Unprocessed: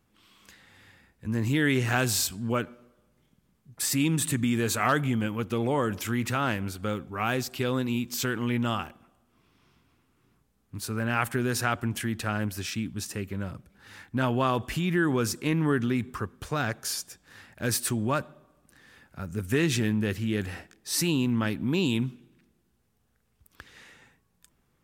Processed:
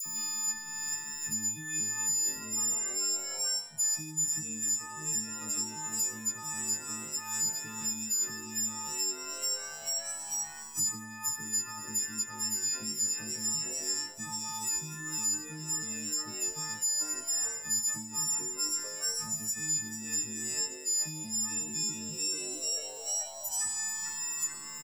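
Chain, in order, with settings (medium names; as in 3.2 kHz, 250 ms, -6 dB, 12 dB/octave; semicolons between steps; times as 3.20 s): partials quantised in pitch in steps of 6 st; comb 5.6 ms, depth 91%; phase dispersion lows, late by 57 ms, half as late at 1.6 kHz; frequency-shifting echo 439 ms, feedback 53%, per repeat +150 Hz, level -8.5 dB; Schroeder reverb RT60 1.1 s, combs from 33 ms, DRR 11 dB; reverse; compression 8:1, threshold -30 dBFS, peak gain reduction 20 dB; reverse; FFT filter 170 Hz 0 dB, 3.5 kHz -16 dB, 5.9 kHz +13 dB, 13 kHz +5 dB; in parallel at -11 dB: hysteresis with a dead band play -43.5 dBFS; on the sum: treble shelf 9.2 kHz +5 dB; feedback comb 890 Hz, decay 0.26 s, mix 70%; three bands compressed up and down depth 100%; trim +1 dB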